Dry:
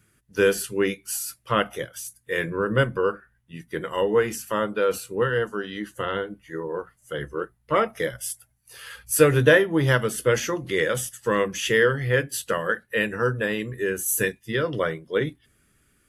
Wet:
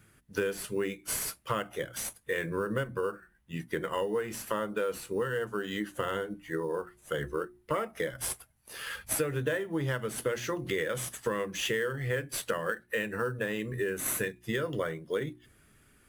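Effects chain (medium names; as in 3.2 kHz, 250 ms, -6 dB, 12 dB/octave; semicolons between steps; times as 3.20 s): hum notches 60/120/180/240/300/360 Hz; in parallel at -8 dB: sample-rate reducer 10 kHz, jitter 0%; on the sum: compression 6:1, threshold -29 dBFS, peak gain reduction 19.5 dB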